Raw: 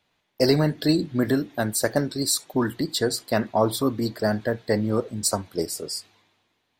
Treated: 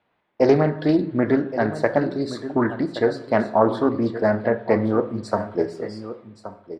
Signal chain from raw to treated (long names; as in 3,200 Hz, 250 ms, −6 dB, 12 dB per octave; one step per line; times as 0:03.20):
low-pass filter 1,700 Hz 12 dB per octave
low-shelf EQ 110 Hz −12 dB
on a send: single-tap delay 1,123 ms −13 dB
on the sum: dense smooth reverb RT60 0.68 s, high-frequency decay 0.65×, DRR 8.5 dB
highs frequency-modulated by the lows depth 0.17 ms
level +4.5 dB